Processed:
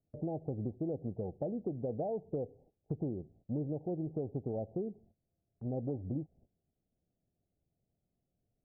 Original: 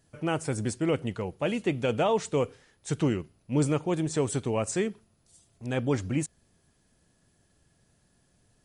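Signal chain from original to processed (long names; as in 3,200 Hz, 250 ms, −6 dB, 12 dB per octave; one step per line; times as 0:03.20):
Butterworth low-pass 800 Hz 96 dB per octave
noise gate −56 dBFS, range −16 dB
downward compressor 6 to 1, threshold −34 dBFS, peak gain reduction 12.5 dB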